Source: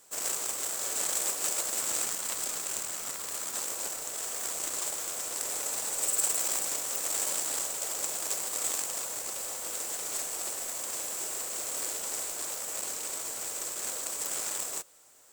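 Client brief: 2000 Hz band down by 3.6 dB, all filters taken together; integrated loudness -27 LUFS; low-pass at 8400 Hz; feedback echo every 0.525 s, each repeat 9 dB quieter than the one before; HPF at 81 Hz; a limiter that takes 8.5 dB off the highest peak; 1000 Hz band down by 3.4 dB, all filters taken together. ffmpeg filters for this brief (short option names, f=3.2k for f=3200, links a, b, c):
-af "highpass=81,lowpass=8.4k,equalizer=f=1k:t=o:g=-3.5,equalizer=f=2k:t=o:g=-3.5,alimiter=limit=-23dB:level=0:latency=1,aecho=1:1:525|1050|1575|2100:0.355|0.124|0.0435|0.0152,volume=7.5dB"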